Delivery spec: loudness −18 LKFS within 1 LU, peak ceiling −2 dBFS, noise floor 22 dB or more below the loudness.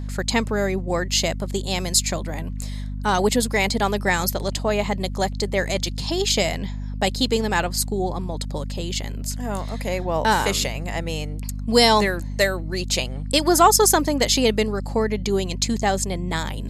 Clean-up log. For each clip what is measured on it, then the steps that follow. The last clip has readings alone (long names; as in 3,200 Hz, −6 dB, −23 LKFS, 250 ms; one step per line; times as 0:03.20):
mains hum 50 Hz; hum harmonics up to 250 Hz; level of the hum −26 dBFS; integrated loudness −22.0 LKFS; sample peak −3.0 dBFS; target loudness −18.0 LKFS
→ mains-hum notches 50/100/150/200/250 Hz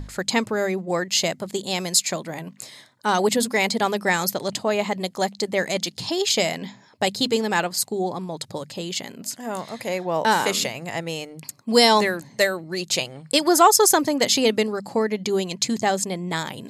mains hum none found; integrated loudness −22.0 LKFS; sample peak −3.5 dBFS; target loudness −18.0 LKFS
→ level +4 dB
brickwall limiter −2 dBFS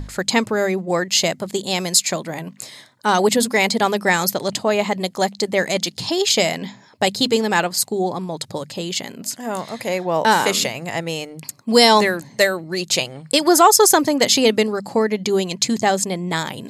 integrated loudness −18.5 LKFS; sample peak −2.0 dBFS; background noise floor −48 dBFS